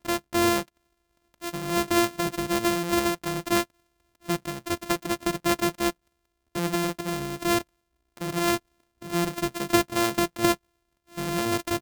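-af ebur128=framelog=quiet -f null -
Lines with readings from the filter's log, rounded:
Integrated loudness:
  I:         -26.7 LUFS
  Threshold: -37.2 LUFS
Loudness range:
  LRA:         2.6 LU
  Threshold: -47.7 LUFS
  LRA low:   -29.1 LUFS
  LRA high:  -26.5 LUFS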